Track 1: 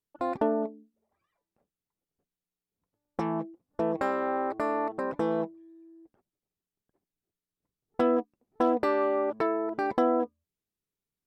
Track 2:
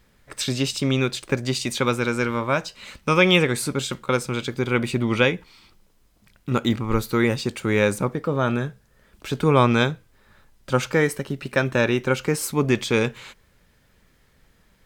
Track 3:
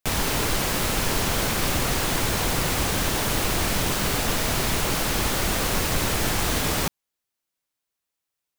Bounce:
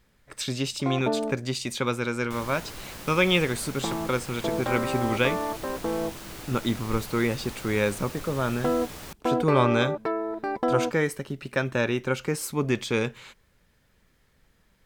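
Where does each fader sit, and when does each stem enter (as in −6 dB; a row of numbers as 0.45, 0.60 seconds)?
−0.5, −5.0, −16.5 decibels; 0.65, 0.00, 2.25 seconds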